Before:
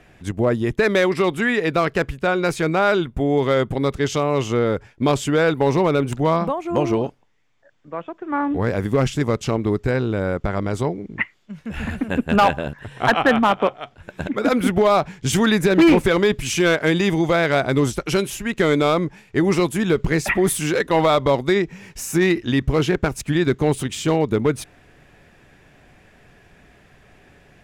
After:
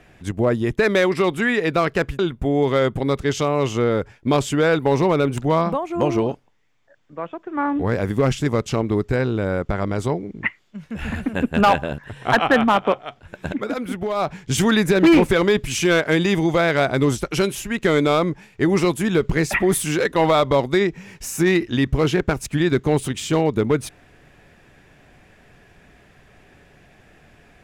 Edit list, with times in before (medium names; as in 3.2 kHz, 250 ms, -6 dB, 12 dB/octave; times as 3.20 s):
2.19–2.94 s: delete
14.29–15.10 s: dip -8.5 dB, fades 0.20 s